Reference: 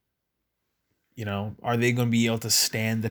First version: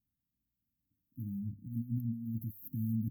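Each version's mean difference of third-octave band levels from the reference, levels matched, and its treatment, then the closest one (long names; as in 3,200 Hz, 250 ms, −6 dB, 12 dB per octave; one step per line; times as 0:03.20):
19.0 dB: mains-hum notches 50/100 Hz
compressor whose output falls as the input rises −26 dBFS, ratio −0.5
linear-phase brick-wall band-stop 310–12,000 Hz
level −7.5 dB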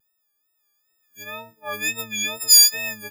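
13.5 dB: every partial snapped to a pitch grid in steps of 6 semitones
high-pass filter 930 Hz 6 dB per octave
tape wow and flutter 78 cents
level −3.5 dB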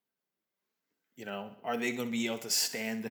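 4.0 dB: high-pass filter 230 Hz 12 dB per octave
flanger 1.1 Hz, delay 4.2 ms, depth 1.2 ms, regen −43%
on a send: repeating echo 63 ms, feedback 55%, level −14.5 dB
on the sum: level −3.5 dB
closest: third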